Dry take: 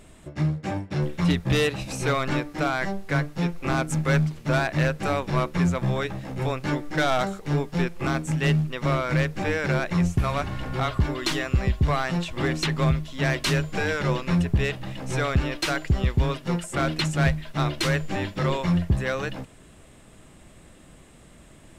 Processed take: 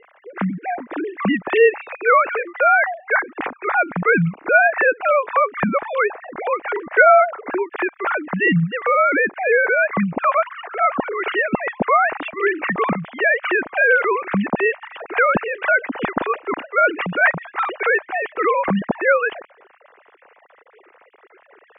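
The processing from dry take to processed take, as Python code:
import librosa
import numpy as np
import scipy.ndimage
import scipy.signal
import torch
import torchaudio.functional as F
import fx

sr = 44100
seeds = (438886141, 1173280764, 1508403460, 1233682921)

y = fx.sine_speech(x, sr)
y = scipy.signal.sosfilt(scipy.signal.butter(4, 2300.0, 'lowpass', fs=sr, output='sos'), y)
y = fx.low_shelf(y, sr, hz=380.0, db=-11.0)
y = y * librosa.db_to_amplitude(9.0)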